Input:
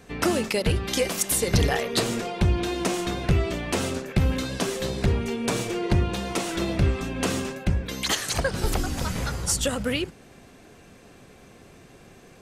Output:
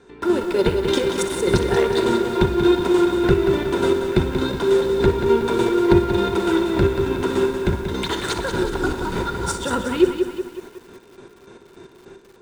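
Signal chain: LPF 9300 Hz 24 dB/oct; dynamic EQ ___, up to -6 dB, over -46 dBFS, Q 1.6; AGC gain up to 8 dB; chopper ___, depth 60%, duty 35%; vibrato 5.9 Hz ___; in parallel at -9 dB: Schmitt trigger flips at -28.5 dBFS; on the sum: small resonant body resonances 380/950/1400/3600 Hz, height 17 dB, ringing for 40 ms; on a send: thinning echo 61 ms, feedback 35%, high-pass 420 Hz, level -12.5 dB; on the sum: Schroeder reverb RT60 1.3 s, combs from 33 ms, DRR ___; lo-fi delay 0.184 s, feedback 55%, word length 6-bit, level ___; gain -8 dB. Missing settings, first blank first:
6100 Hz, 3.4 Hz, 5.5 cents, 14.5 dB, -7.5 dB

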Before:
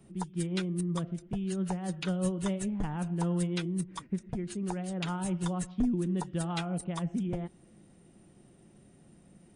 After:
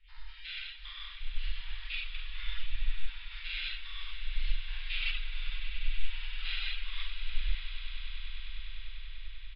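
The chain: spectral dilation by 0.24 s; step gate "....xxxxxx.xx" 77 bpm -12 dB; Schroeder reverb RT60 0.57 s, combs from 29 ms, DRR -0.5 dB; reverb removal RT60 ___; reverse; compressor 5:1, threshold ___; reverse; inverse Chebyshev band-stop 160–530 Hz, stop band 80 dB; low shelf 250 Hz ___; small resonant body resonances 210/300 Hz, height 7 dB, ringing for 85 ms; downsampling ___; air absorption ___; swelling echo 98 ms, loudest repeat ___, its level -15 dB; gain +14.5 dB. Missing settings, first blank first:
0.54 s, -35 dBFS, +3.5 dB, 11025 Hz, 430 m, 8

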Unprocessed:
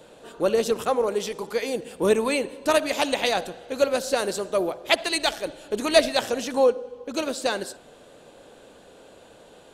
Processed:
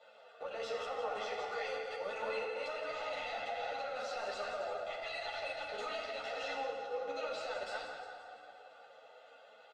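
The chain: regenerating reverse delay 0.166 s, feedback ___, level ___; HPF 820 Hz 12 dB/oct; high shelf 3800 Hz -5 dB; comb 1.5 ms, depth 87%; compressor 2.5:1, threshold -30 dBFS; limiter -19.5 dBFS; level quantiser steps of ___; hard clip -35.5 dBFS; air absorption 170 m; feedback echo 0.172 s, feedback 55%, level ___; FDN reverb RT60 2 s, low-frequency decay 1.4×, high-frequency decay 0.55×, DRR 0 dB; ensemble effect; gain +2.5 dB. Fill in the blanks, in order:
51%, -10 dB, 20 dB, -10 dB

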